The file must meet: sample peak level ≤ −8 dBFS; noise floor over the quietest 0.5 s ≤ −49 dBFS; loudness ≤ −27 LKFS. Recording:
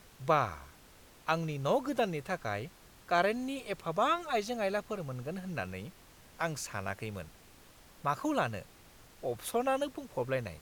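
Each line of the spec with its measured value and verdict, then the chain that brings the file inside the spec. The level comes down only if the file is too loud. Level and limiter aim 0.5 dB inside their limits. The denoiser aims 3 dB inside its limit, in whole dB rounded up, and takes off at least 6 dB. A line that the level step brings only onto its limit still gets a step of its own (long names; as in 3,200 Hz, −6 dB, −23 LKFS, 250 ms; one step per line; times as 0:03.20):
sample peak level −14.0 dBFS: in spec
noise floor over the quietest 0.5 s −58 dBFS: in spec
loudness −34.0 LKFS: in spec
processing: no processing needed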